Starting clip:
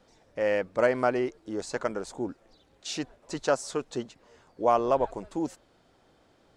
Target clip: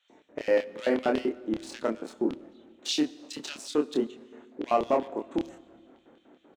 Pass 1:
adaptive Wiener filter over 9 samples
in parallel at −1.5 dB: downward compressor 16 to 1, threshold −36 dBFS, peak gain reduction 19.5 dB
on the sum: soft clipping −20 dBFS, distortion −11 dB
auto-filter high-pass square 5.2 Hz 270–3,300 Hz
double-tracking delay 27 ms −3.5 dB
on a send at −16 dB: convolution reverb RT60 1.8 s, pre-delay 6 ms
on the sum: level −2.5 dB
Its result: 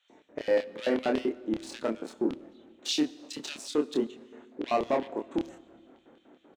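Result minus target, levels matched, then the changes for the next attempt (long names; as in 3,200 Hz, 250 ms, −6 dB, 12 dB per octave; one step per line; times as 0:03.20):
soft clipping: distortion +7 dB
change: soft clipping −13.5 dBFS, distortion −19 dB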